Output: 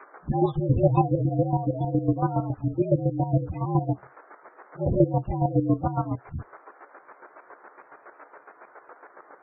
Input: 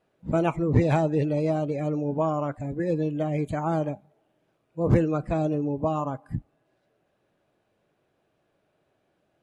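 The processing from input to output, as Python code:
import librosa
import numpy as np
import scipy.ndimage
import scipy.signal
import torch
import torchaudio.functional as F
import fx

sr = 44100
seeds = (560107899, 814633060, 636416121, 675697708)

y = fx.partial_stretch(x, sr, pct=118)
y = fx.low_shelf(y, sr, hz=68.0, db=5.0)
y = fx.env_flanger(y, sr, rest_ms=5.8, full_db=-26.0)
y = fx.dmg_noise_band(y, sr, seeds[0], low_hz=330.0, high_hz=1500.0, level_db=-53.0)
y = fx.room_early_taps(y, sr, ms=(14, 24), db=(-6.0, -14.5))
y = fx.chopper(y, sr, hz=7.2, depth_pct=65, duty_pct=30)
y = fx.spec_gate(y, sr, threshold_db=-25, keep='strong')
y = fx.high_shelf(y, sr, hz=3700.0, db=11.5)
y = y * 10.0 ** (6.0 / 20.0)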